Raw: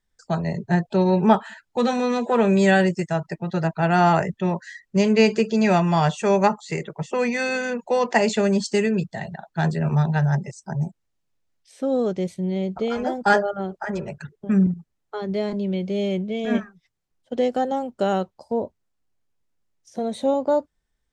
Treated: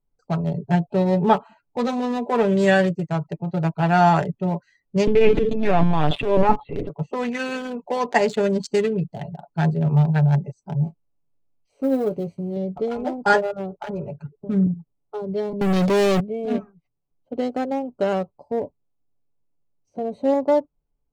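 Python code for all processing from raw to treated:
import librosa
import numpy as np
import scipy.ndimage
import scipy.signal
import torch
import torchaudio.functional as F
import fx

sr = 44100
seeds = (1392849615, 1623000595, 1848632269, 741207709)

y = fx.chain(x, sr, fx.transient(attack_db=-9, sustain_db=12),
    fx.peak_eq(hz=280.0, db=5.5, octaves=0.43),
    fx.lpc_vocoder(seeds[0], excitation='pitch_kept', order=16), at=(5.07, 6.89))
y = fx.chain(y, sr, fx.block_float(bits=5),
    fx.doubler(ms=19.0, db=-9), at=(10.84, 12.57))
y = fx.chain(y, sr, fx.highpass(hz=140.0, slope=12),
    fx.leveller(passes=5), at=(15.61, 16.2))
y = fx.wiener(y, sr, points=25)
y = y + 0.45 * np.pad(y, (int(7.0 * sr / 1000.0), 0))[:len(y)]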